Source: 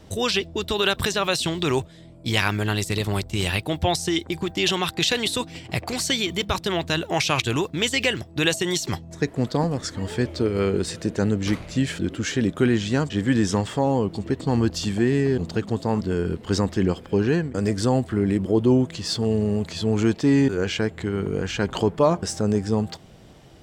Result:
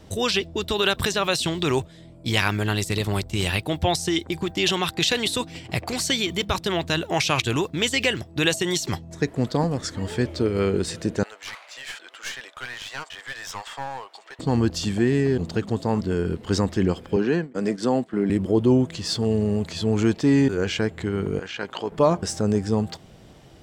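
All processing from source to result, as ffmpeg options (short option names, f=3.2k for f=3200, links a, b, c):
-filter_complex "[0:a]asettb=1/sr,asplit=3[a][b][c];[a]atrim=end=11.234[d];[b]atrim=start=11.23:end=14.39,asetpts=PTS-STARTPTS,afade=t=in:d=0.004:c=qsin,afade=t=out:st=3.156:d=0.004:c=qsin,highpass=f=780:w=0.5412,highpass=f=780:w=1.3066,highshelf=f=6.6k:g=-8.5,aeval=exprs='clip(val(0),-1,0.0188)':c=same[e];[c]atrim=start=14.386[f];[d][e]acrossfade=d=0.004:c1=hsin:c2=qsin[g];[g][f]acrossfade=d=0.004:c1=qsin:c2=hsin,asettb=1/sr,asplit=3[h][i][j];[h]atrim=end=17.164[k];[i]atrim=start=17.16:end=18.3,asetpts=PTS-STARTPTS,afade=t=in:d=0.004:c=qsin,afade=t=out:st=1.136:d=0.004:c=qsin,highpass=f=170:w=0.5412,highpass=f=170:w=1.3066,agate=range=-10dB:threshold=-30dB:ratio=16:release=100:detection=peak,highshelf=f=7.7k:g=-11[l];[j]atrim=start=18.296[m];[k][l]acrossfade=d=0.004:c1=hsin:c2=qsin[n];[n][m]acrossfade=d=0.004:c1=qsin:c2=hsin,asettb=1/sr,asplit=3[o][p][q];[o]atrim=end=21.394[r];[p]atrim=start=21.39:end=21.92,asetpts=PTS-STARTPTS,afade=t=in:d=0.004:c=qsin,afade=t=out:st=0.526:d=0.004:c=qsin,tremolo=f=58:d=0.462,highpass=f=630:p=1,acrossover=split=4900[s][t];[t]acompressor=threshold=-56dB:ratio=4:attack=1:release=60[u];[s][u]amix=inputs=2:normalize=0[v];[q]atrim=start=21.916[w];[r][v]acrossfade=d=0.004:c1=hsin:c2=qsin[x];[x][w]acrossfade=d=0.004:c1=qsin:c2=hsin"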